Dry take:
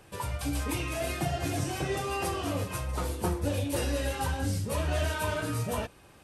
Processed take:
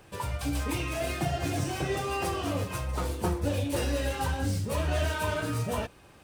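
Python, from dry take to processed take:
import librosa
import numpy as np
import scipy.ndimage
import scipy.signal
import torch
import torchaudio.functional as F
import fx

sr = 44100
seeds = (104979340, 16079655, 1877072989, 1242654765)

y = scipy.ndimage.median_filter(x, 3, mode='constant')
y = y * librosa.db_to_amplitude(1.0)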